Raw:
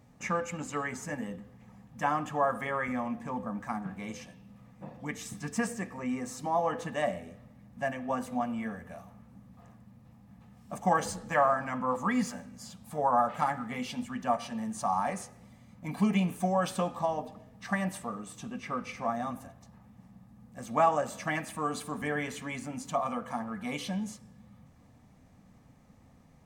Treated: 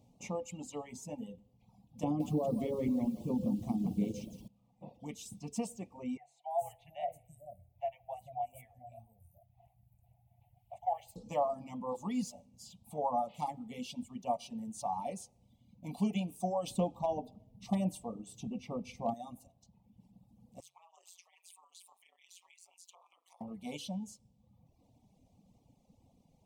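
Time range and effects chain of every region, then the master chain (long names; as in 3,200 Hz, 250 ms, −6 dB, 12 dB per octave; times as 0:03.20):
0:02.03–0:04.48: low shelf with overshoot 550 Hz +14 dB, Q 1.5 + downward compressor 12 to 1, threshold −22 dBFS + feedback echo at a low word length 169 ms, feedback 35%, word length 8 bits, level −6 dB
0:06.17–0:11.16: drawn EQ curve 120 Hz 0 dB, 240 Hz −29 dB, 420 Hz −27 dB, 700 Hz +5 dB, 1,200 Hz −19 dB, 1,900 Hz +3 dB, 5,400 Hz −20 dB, 8,500 Hz −3 dB, 15,000 Hz +8 dB + three-band delay without the direct sound mids, highs, lows 330/440 ms, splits 470/5,800 Hz
0:16.67–0:19.14: hum removal 82.48 Hz, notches 9 + gain into a clipping stage and back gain 22 dB + low-shelf EQ 500 Hz +8 dB
0:20.60–0:23.41: high-pass filter 1,100 Hz 24 dB per octave + downward compressor 16 to 1, threshold −42 dBFS + amplitude modulation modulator 180 Hz, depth 95%
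whole clip: Chebyshev band-stop filter 820–2,900 Hz, order 2; hum removal 68.43 Hz, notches 2; reverb reduction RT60 1.2 s; level −4 dB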